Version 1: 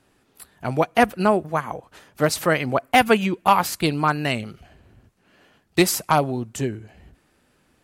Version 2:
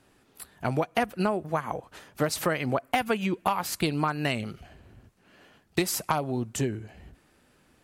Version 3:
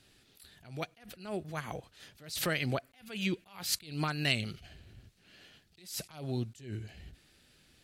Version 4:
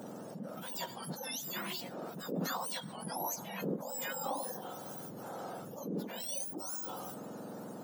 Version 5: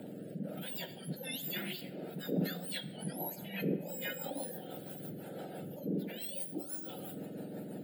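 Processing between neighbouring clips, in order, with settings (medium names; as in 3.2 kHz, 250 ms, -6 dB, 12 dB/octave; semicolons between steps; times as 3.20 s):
compression 12:1, threshold -22 dBFS, peak gain reduction 13 dB
ten-band graphic EQ 250 Hz -5 dB, 500 Hz -4 dB, 1 kHz -11 dB, 4 kHz +8 dB; attacks held to a fixed rise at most 120 dB/s
spectrum inverted on a logarithmic axis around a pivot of 1.5 kHz; random-step tremolo; level flattener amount 70%; trim -7 dB
rotary cabinet horn 1.2 Hz, later 6 Hz, at 2.36 s; static phaser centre 2.6 kHz, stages 4; simulated room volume 1300 m³, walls mixed, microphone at 0.43 m; trim +4.5 dB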